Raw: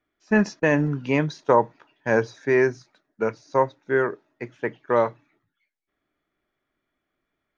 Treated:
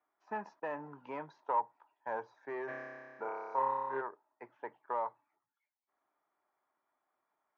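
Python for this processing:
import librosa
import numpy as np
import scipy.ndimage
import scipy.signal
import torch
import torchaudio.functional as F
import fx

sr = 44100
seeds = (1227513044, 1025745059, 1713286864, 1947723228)

y = 10.0 ** (-12.0 / 20.0) * np.tanh(x / 10.0 ** (-12.0 / 20.0))
y = fx.bandpass_q(y, sr, hz=910.0, q=4.5)
y = fx.room_flutter(y, sr, wall_m=5.1, rt60_s=1.4, at=(2.67, 4.0), fade=0.02)
y = fx.band_squash(y, sr, depth_pct=40)
y = y * 10.0 ** (-3.5 / 20.0)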